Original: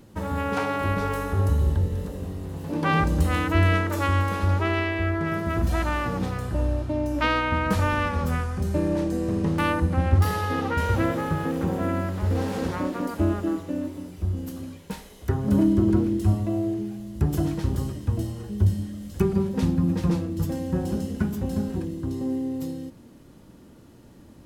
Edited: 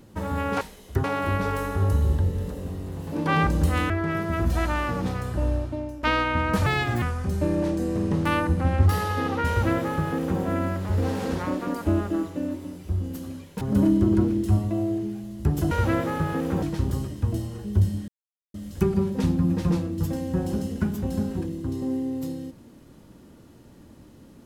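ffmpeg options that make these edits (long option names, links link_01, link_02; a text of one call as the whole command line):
ffmpeg -i in.wav -filter_complex "[0:a]asplit=11[link_01][link_02][link_03][link_04][link_05][link_06][link_07][link_08][link_09][link_10][link_11];[link_01]atrim=end=0.612[link_12];[link_02]atrim=start=14.938:end=15.372[link_13];[link_03]atrim=start=0.608:end=3.472[link_14];[link_04]atrim=start=5.068:end=7.2,asetpts=PTS-STARTPTS,afade=type=out:start_time=1.642:duration=0.49:silence=0.16788[link_15];[link_05]atrim=start=7.2:end=7.834,asetpts=PTS-STARTPTS,afade=type=in:duration=0.004:curve=hsin:silence=0.16788[link_16];[link_06]atrim=start=7.83:end=8.35,asetpts=PTS-STARTPTS,asetrate=63504,aresample=44100[link_17];[link_07]atrim=start=8.346:end=14.942[link_18];[link_08]atrim=start=15.368:end=17.472[link_19];[link_09]atrim=start=10.818:end=11.732[link_20];[link_10]atrim=start=17.468:end=18.93,asetpts=PTS-STARTPTS,afade=type=out:start_time=1.458:duration=0.004:curve=hsin,apad=pad_dur=0.46[link_21];[link_11]atrim=start=18.93,asetpts=PTS-STARTPTS,afade=type=in:duration=0.004:curve=hsin[link_22];[link_12][link_13]acrossfade=duration=0.004:curve1=hsin:curve2=hsin[link_23];[link_23][link_14]acrossfade=duration=0.004:curve1=hsin:curve2=hsin[link_24];[link_15][link_16]concat=n=2:v=0:a=1[link_25];[link_24][link_25]acrossfade=duration=0.004:curve1=hsin:curve2=hsin[link_26];[link_26][link_17]acrossfade=duration=0.004:curve1=hsin:curve2=hsin[link_27];[link_27][link_18]acrossfade=duration=0.004:curve1=hsin:curve2=hsin[link_28];[link_28][link_19]acrossfade=duration=0.004:curve1=hsin:curve2=hsin[link_29];[link_29][link_20]acrossfade=duration=0.004:curve1=hsin:curve2=hsin[link_30];[link_21][link_22]concat=n=2:v=0:a=1[link_31];[link_30][link_31]acrossfade=duration=0.004:curve1=hsin:curve2=hsin" out.wav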